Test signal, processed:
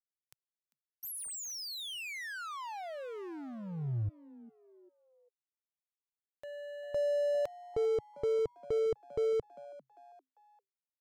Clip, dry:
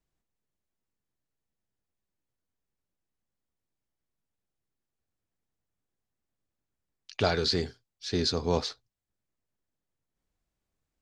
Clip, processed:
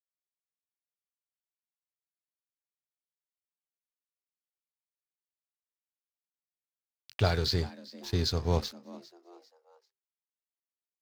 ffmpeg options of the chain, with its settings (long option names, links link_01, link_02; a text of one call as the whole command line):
ffmpeg -i in.wav -filter_complex "[0:a]aeval=exprs='sgn(val(0))*max(abs(val(0))-0.00708,0)':channel_layout=same,lowshelf=frequency=160:width_type=q:width=1.5:gain=7.5,asplit=4[link_01][link_02][link_03][link_04];[link_02]adelay=397,afreqshift=130,volume=-19.5dB[link_05];[link_03]adelay=794,afreqshift=260,volume=-27.5dB[link_06];[link_04]adelay=1191,afreqshift=390,volume=-35.4dB[link_07];[link_01][link_05][link_06][link_07]amix=inputs=4:normalize=0,volume=-2dB" out.wav